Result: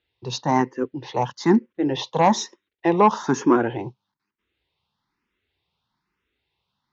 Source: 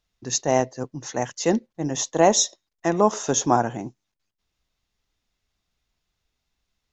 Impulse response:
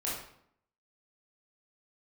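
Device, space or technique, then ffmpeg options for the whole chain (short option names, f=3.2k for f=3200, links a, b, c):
barber-pole phaser into a guitar amplifier: -filter_complex "[0:a]asplit=2[a][b];[b]afreqshift=1.1[c];[a][c]amix=inputs=2:normalize=1,asoftclip=type=tanh:threshold=-13dB,highpass=100,equalizer=f=370:t=q:w=4:g=4,equalizer=f=660:t=q:w=4:g=-10,equalizer=f=930:t=q:w=4:g=7,lowpass=f=4k:w=0.5412,lowpass=f=4k:w=1.3066,volume=7dB"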